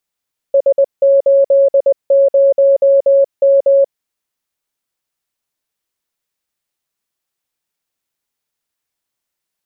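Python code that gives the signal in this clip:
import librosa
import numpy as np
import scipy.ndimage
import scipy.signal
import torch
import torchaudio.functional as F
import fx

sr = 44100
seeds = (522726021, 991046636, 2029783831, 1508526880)

y = fx.morse(sr, text='S80M', wpm=20, hz=552.0, level_db=-6.0)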